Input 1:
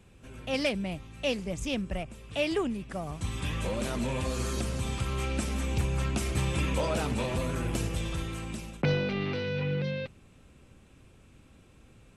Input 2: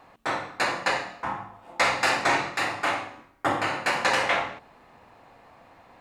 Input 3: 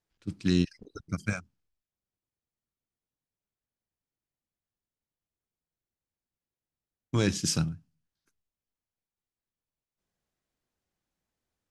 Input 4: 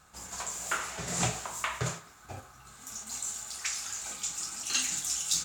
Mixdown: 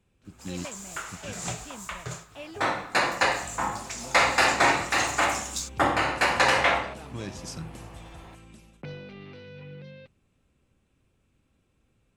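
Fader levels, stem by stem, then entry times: −13.0, +2.0, −11.0, −4.0 decibels; 0.00, 2.35, 0.00, 0.25 seconds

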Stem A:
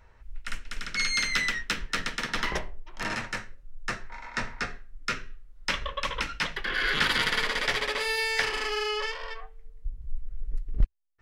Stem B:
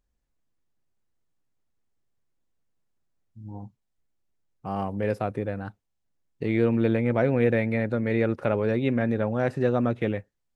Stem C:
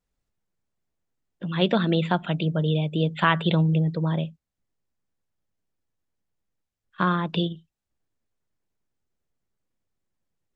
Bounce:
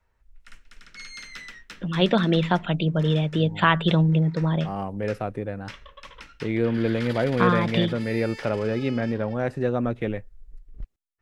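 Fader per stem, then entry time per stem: −13.5, −1.0, +1.5 decibels; 0.00, 0.00, 0.40 seconds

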